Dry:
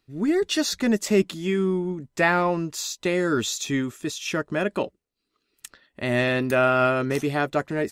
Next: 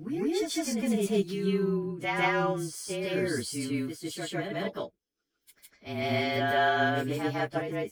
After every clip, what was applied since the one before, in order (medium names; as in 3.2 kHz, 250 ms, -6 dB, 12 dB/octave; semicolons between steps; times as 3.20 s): frequency axis rescaled in octaves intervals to 109%; reverse echo 154 ms -3.5 dB; trim -5.5 dB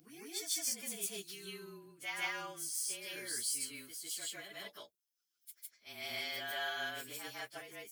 pre-emphasis filter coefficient 0.97; trim +2 dB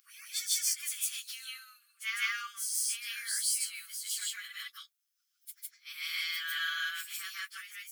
brick-wall FIR high-pass 1.1 kHz; trim +6 dB